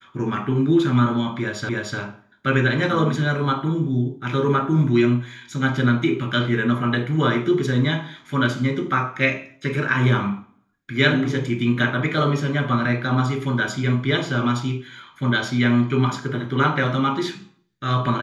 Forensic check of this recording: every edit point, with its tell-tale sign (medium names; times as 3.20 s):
1.69 s: repeat of the last 0.3 s